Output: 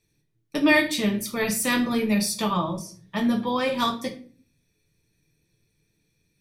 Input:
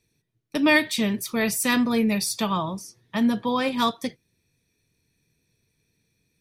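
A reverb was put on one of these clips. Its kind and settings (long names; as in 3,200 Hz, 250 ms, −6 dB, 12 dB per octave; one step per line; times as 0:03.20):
rectangular room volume 33 cubic metres, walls mixed, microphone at 0.43 metres
level −2 dB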